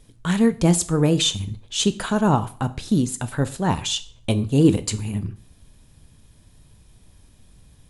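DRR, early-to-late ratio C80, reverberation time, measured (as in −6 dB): 11.5 dB, 21.0 dB, 0.45 s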